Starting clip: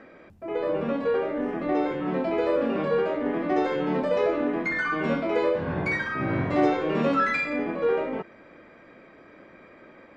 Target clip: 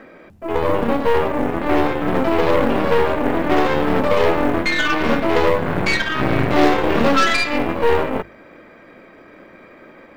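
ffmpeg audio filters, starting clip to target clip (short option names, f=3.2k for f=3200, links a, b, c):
-af "aeval=exprs='0.299*(cos(1*acos(clip(val(0)/0.299,-1,1)))-cos(1*PI/2))+0.0531*(cos(8*acos(clip(val(0)/0.299,-1,1)))-cos(8*PI/2))':c=same,bandreject=f=50:t=h:w=6,bandreject=f=100:t=h:w=6,bandreject=f=150:t=h:w=6,acrusher=bits=9:mode=log:mix=0:aa=0.000001,volume=6.5dB"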